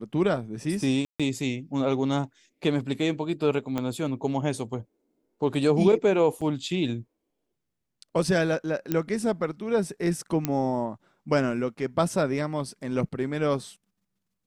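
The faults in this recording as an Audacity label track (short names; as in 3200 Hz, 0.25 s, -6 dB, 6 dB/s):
1.050000	1.200000	gap 0.146 s
3.780000	3.780000	pop -15 dBFS
6.410000	6.420000	gap 6.3 ms
8.920000	8.920000	pop -12 dBFS
10.450000	10.450000	pop -10 dBFS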